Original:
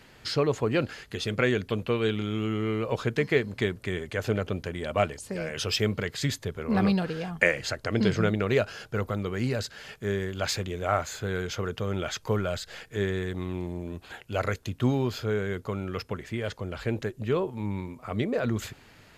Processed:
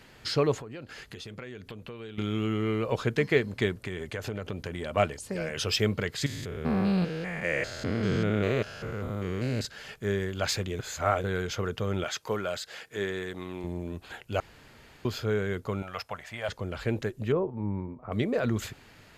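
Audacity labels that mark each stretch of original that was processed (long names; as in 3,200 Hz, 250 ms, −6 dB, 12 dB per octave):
0.590000	2.180000	downward compressor, threshold −39 dBFS
3.840000	4.970000	downward compressor, threshold −29 dBFS
6.260000	9.650000	spectrum averaged block by block every 200 ms
10.790000	11.240000	reverse
12.040000	13.640000	high-pass filter 370 Hz 6 dB per octave
14.400000	15.050000	fill with room tone
15.820000	16.490000	low shelf with overshoot 500 Hz −10 dB, Q 3
17.320000	18.120000	low-pass filter 1,000 Hz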